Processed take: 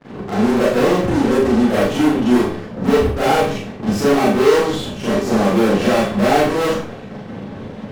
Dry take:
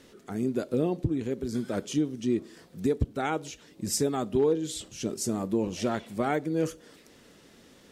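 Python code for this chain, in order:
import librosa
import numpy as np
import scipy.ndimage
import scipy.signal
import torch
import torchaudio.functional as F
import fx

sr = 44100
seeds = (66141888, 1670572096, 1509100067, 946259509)

p1 = scipy.signal.sosfilt(scipy.signal.butter(2, 2100.0, 'lowpass', fs=sr, output='sos'), x)
p2 = fx.peak_eq(p1, sr, hz=560.0, db=6.5, octaves=0.74)
p3 = fx.tube_stage(p2, sr, drive_db=16.0, bias=0.7)
p4 = fx.dmg_noise_band(p3, sr, seeds[0], low_hz=90.0, high_hz=230.0, level_db=-51.0)
p5 = fx.fuzz(p4, sr, gain_db=42.0, gate_db=-49.0)
p6 = p4 + (p5 * librosa.db_to_amplitude(-3.0))
p7 = fx.doubler(p6, sr, ms=40.0, db=-6.0)
p8 = fx.rev_schroeder(p7, sr, rt60_s=0.4, comb_ms=29, drr_db=-8.5)
y = p8 * librosa.db_to_amplitude(-8.0)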